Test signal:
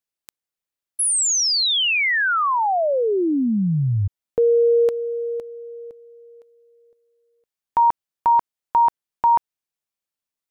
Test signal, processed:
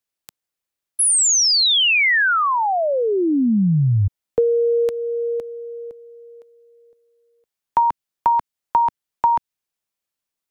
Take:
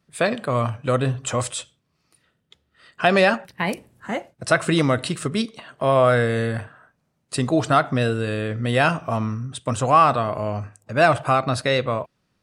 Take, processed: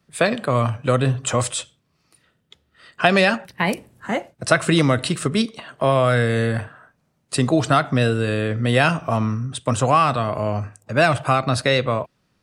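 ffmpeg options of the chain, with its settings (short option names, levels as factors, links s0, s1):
-filter_complex "[0:a]acrossover=split=240|1800[s0][s1][s2];[s1]acompressor=threshold=0.0708:ratio=3:attack=67:release=723:knee=2.83:detection=peak[s3];[s0][s3][s2]amix=inputs=3:normalize=0,volume=1.5"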